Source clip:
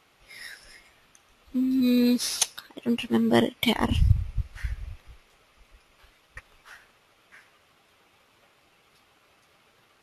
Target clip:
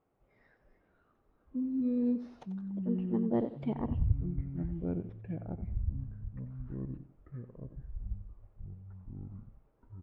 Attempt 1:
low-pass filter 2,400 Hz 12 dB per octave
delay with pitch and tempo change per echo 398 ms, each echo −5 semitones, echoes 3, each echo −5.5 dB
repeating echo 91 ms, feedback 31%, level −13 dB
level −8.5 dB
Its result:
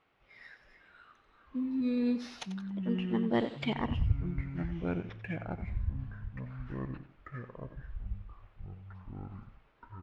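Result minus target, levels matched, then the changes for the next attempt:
2,000 Hz band +18.0 dB
change: low-pass filter 660 Hz 12 dB per octave

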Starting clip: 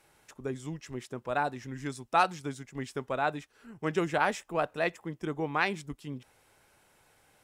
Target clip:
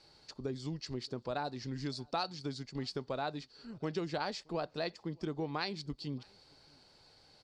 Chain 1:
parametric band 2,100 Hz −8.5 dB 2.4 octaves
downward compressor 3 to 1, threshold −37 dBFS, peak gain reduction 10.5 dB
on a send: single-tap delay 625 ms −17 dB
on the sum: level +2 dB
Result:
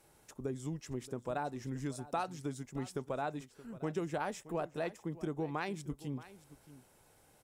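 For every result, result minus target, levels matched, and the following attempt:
4,000 Hz band −11.0 dB; echo-to-direct +12 dB
low-pass with resonance 4,500 Hz, resonance Q 15
parametric band 2,100 Hz −8.5 dB 2.4 octaves
downward compressor 3 to 1, threshold −37 dBFS, peak gain reduction 11.5 dB
on a send: single-tap delay 625 ms −17 dB
on the sum: level +2 dB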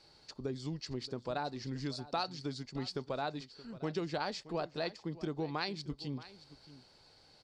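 echo-to-direct +12 dB
low-pass with resonance 4,500 Hz, resonance Q 15
parametric band 2,100 Hz −8.5 dB 2.4 octaves
downward compressor 3 to 1, threshold −37 dBFS, peak gain reduction 11.5 dB
on a send: single-tap delay 625 ms −29 dB
on the sum: level +2 dB

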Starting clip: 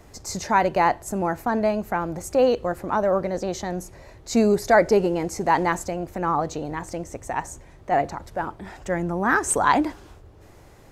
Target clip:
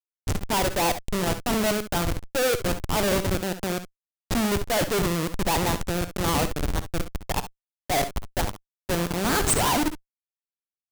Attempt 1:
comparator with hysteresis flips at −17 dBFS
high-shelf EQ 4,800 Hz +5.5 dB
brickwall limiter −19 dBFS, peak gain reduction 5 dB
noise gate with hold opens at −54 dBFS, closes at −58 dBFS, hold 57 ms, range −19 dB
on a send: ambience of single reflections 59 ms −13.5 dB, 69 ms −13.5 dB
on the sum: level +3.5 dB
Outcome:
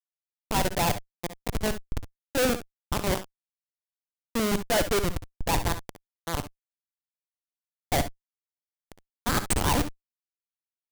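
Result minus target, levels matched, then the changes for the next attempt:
comparator with hysteresis: distortion +4 dB
change: comparator with hysteresis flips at −23.5 dBFS

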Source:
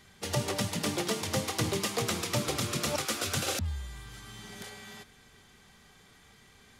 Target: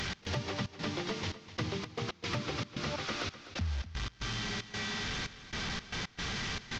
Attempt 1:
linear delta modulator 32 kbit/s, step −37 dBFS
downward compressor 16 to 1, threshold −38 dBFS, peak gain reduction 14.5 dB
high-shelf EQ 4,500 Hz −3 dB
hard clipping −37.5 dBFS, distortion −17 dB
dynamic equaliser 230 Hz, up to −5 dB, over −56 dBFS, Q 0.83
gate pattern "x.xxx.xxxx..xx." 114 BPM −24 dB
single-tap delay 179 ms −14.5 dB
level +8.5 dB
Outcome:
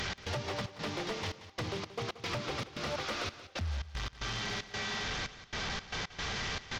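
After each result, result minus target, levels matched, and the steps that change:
hard clipping: distortion +18 dB; echo 72 ms early; 250 Hz band −3.0 dB
change: hard clipping −31 dBFS, distortion −35 dB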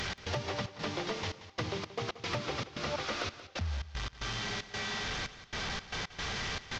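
echo 72 ms early; 250 Hz band −3.0 dB
change: single-tap delay 251 ms −14.5 dB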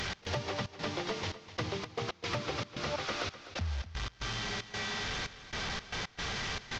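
250 Hz band −3.0 dB
change: dynamic equaliser 590 Hz, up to −5 dB, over −56 dBFS, Q 0.83

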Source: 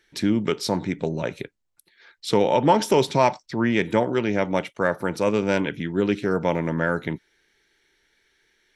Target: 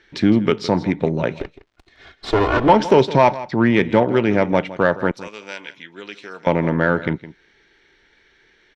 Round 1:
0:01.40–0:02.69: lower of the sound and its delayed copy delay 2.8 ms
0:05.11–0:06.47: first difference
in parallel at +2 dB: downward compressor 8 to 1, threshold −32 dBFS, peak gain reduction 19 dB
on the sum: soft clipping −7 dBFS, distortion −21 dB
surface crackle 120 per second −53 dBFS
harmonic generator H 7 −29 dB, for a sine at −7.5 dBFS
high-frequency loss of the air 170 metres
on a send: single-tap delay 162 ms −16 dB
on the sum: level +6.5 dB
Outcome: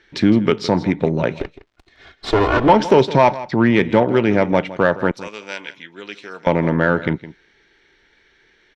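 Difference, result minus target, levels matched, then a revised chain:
downward compressor: peak gain reduction −7.5 dB
0:01.40–0:02.69: lower of the sound and its delayed copy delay 2.8 ms
0:05.11–0:06.47: first difference
in parallel at +2 dB: downward compressor 8 to 1, threshold −40.5 dBFS, peak gain reduction 26.5 dB
on the sum: soft clipping −7 dBFS, distortion −22 dB
surface crackle 120 per second −53 dBFS
harmonic generator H 7 −29 dB, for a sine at −7.5 dBFS
high-frequency loss of the air 170 metres
on a send: single-tap delay 162 ms −16 dB
on the sum: level +6.5 dB

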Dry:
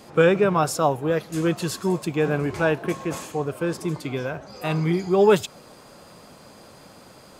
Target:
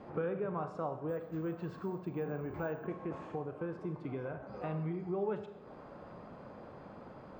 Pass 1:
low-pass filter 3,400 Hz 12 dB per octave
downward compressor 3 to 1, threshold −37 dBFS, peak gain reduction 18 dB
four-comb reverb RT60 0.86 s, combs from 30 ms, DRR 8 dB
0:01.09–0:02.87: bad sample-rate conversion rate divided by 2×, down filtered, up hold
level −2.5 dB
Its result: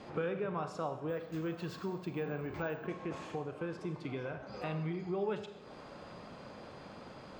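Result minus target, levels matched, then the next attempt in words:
4,000 Hz band +13.0 dB
low-pass filter 1,400 Hz 12 dB per octave
downward compressor 3 to 1, threshold −37 dBFS, peak gain reduction 18 dB
four-comb reverb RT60 0.86 s, combs from 30 ms, DRR 8 dB
0:01.09–0:02.87: bad sample-rate conversion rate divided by 2×, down filtered, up hold
level −2.5 dB

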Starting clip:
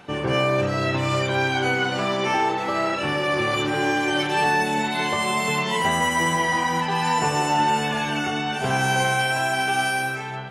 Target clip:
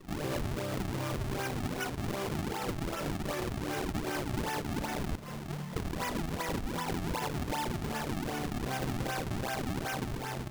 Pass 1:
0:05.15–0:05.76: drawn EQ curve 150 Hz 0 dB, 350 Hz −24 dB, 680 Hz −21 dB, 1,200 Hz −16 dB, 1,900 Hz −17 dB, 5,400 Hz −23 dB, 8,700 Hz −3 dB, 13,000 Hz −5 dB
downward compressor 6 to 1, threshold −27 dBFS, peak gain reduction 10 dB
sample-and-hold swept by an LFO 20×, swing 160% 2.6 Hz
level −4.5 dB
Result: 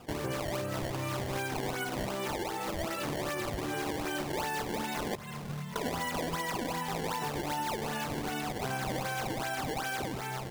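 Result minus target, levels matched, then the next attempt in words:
sample-and-hold swept by an LFO: distortion −7 dB
0:05.15–0:05.76: drawn EQ curve 150 Hz 0 dB, 350 Hz −24 dB, 680 Hz −21 dB, 1,200 Hz −16 dB, 1,900 Hz −17 dB, 5,400 Hz −23 dB, 8,700 Hz −3 dB, 13,000 Hz −5 dB
downward compressor 6 to 1, threshold −27 dBFS, peak gain reduction 10 dB
sample-and-hold swept by an LFO 51×, swing 160% 2.6 Hz
level −4.5 dB

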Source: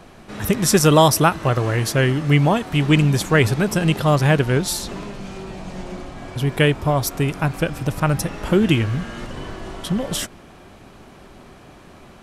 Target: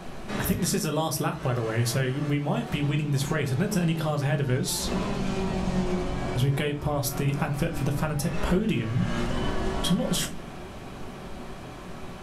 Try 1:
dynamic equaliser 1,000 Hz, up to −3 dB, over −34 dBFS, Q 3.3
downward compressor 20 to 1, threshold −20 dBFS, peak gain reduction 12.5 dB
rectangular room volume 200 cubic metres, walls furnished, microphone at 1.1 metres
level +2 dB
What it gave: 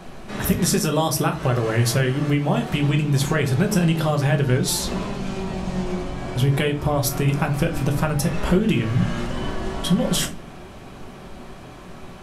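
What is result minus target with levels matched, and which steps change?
downward compressor: peak gain reduction −6 dB
change: downward compressor 20 to 1, threshold −26.5 dBFS, peak gain reduction 18.5 dB

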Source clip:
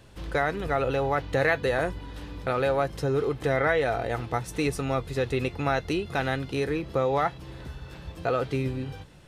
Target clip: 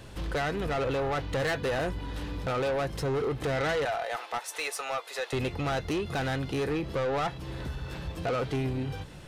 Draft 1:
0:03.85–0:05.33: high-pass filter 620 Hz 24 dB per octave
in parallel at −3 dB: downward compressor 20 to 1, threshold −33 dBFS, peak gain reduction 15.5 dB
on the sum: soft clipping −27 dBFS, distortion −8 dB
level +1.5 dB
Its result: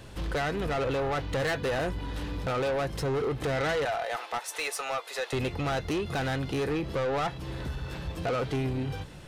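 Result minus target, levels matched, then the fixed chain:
downward compressor: peak gain reduction −6 dB
0:03.85–0:05.33: high-pass filter 620 Hz 24 dB per octave
in parallel at −3 dB: downward compressor 20 to 1, threshold −39.5 dBFS, peak gain reduction 21.5 dB
on the sum: soft clipping −27 dBFS, distortion −8 dB
level +1.5 dB

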